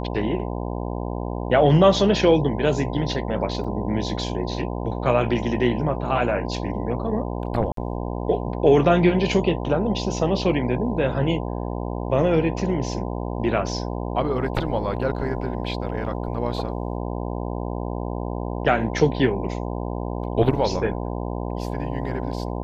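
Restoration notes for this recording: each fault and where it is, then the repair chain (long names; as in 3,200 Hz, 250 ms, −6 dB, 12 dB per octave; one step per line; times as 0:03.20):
mains buzz 60 Hz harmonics 17 −28 dBFS
0:03.64–0:03.65: drop-out 5.4 ms
0:07.72–0:07.77: drop-out 53 ms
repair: hum removal 60 Hz, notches 17
repair the gap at 0:03.64, 5.4 ms
repair the gap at 0:07.72, 53 ms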